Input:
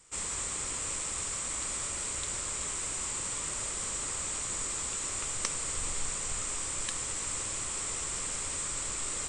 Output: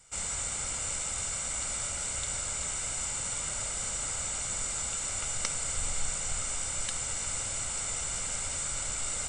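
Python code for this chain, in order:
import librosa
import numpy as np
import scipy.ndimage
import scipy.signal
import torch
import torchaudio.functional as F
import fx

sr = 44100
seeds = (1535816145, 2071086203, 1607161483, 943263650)

y = x + 0.56 * np.pad(x, (int(1.4 * sr / 1000.0), 0))[:len(x)]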